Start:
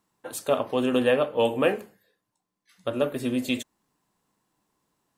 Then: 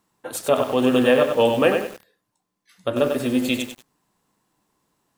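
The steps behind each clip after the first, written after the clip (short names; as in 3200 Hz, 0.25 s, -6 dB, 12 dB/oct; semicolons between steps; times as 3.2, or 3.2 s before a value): lo-fi delay 95 ms, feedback 35%, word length 7-bit, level -5.5 dB; gain +4.5 dB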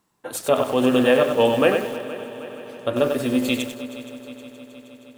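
multi-head echo 0.157 s, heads second and third, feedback 65%, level -17 dB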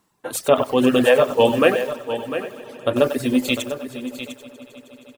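reverb removal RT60 1.2 s; echo 0.701 s -11 dB; gain +3.5 dB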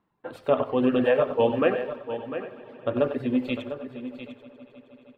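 air absorption 430 m; on a send at -14 dB: reverb RT60 0.50 s, pre-delay 57 ms; on the sum: gain -5 dB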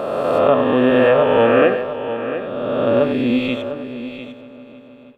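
spectral swells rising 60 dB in 2.27 s; gain +4.5 dB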